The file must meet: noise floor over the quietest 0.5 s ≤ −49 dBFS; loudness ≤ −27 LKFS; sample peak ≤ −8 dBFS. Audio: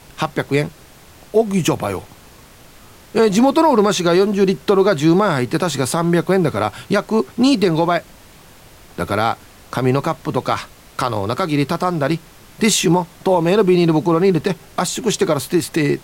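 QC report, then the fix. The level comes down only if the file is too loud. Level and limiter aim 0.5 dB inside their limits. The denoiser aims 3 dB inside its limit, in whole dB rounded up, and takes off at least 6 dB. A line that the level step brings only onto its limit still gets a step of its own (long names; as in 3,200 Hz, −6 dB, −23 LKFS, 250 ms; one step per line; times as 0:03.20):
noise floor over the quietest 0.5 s −44 dBFS: out of spec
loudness −17.5 LKFS: out of spec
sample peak −4.5 dBFS: out of spec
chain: level −10 dB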